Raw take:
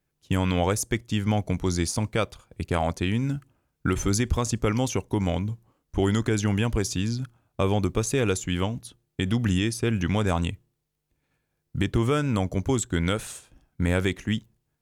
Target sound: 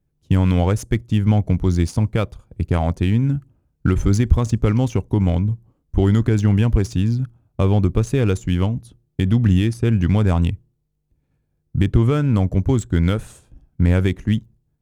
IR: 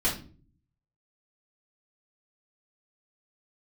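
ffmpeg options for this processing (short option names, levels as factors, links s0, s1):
-filter_complex "[0:a]lowshelf=f=250:g=12,asplit=2[s0][s1];[s1]adynamicsmooth=sensitivity=6:basefreq=1200,volume=1.12[s2];[s0][s2]amix=inputs=2:normalize=0,volume=0.473"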